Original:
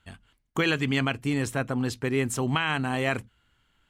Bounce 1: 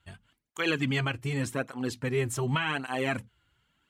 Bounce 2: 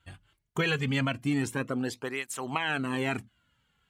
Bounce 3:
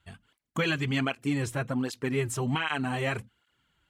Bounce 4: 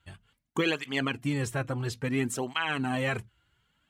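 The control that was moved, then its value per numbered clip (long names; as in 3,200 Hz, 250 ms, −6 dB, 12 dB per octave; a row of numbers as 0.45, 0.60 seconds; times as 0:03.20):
through-zero flanger with one copy inverted, nulls at: 0.87, 0.22, 1.3, 0.59 Hertz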